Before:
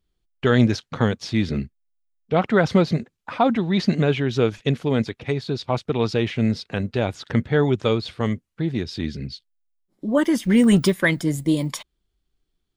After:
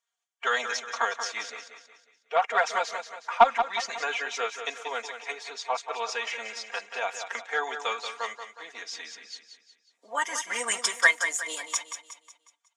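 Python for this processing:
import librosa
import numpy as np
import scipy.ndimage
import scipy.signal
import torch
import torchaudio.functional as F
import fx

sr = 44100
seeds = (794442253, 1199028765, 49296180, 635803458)

y = fx.spec_quant(x, sr, step_db=15)
y = scipy.signal.sosfilt(scipy.signal.butter(4, 770.0, 'highpass', fs=sr, output='sos'), y)
y = fx.high_shelf_res(y, sr, hz=5400.0, db=7.0, q=3.0)
y = y + 0.83 * np.pad(y, (int(4.3 * sr / 1000.0), 0))[:len(y)]
y = fx.cheby_harmonics(y, sr, harmonics=(3,), levels_db=(-18,), full_scale_db=-6.0)
y = fx.air_absorb(y, sr, metres=91.0)
y = fx.echo_feedback(y, sr, ms=182, feedback_pct=44, wet_db=-9.0)
y = F.gain(torch.from_numpy(y), 4.5).numpy()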